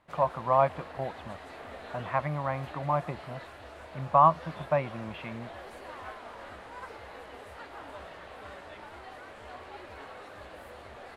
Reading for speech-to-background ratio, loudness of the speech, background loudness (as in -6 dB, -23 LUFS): 16.5 dB, -28.5 LUFS, -45.0 LUFS